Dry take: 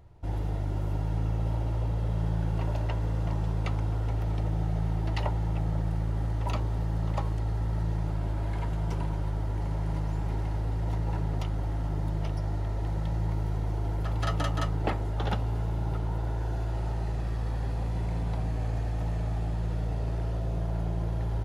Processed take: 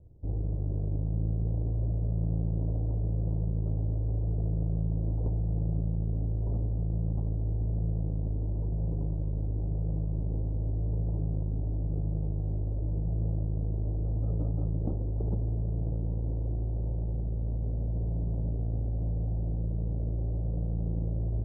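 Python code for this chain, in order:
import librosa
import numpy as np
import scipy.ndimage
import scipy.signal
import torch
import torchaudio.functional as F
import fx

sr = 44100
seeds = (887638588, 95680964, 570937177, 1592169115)

y = fx.lower_of_two(x, sr, delay_ms=0.74)
y = scipy.signal.sosfilt(scipy.signal.butter(6, 640.0, 'lowpass', fs=sr, output='sos'), y)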